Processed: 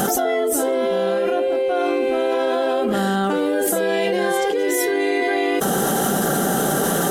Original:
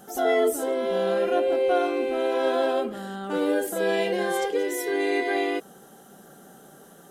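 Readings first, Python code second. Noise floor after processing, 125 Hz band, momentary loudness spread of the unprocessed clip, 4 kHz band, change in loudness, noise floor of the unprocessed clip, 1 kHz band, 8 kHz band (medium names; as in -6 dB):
-21 dBFS, no reading, 5 LU, +7.0 dB, +5.0 dB, -51 dBFS, +7.0 dB, +14.0 dB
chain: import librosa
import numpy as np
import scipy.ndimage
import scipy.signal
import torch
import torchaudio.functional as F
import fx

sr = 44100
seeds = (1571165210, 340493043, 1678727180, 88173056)

y = fx.env_flatten(x, sr, amount_pct=100)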